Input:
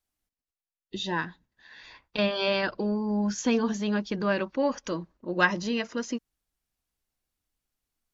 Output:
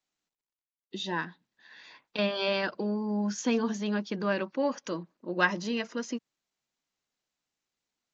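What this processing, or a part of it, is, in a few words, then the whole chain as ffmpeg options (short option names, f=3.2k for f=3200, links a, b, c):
Bluetooth headset: -af "highpass=f=150:w=0.5412,highpass=f=150:w=1.3066,aresample=16000,aresample=44100,volume=-2.5dB" -ar 16000 -c:a sbc -b:a 64k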